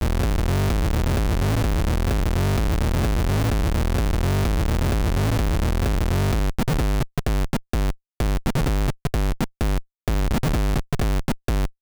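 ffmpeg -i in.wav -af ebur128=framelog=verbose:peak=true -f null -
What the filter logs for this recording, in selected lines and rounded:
Integrated loudness:
  I:         -23.5 LUFS
  Threshold: -33.5 LUFS
Loudness range:
  LRA:         2.6 LU
  Threshold: -43.4 LUFS
  LRA low:   -25.1 LUFS
  LRA high:  -22.5 LUFS
True peak:
  Peak:      -12.5 dBFS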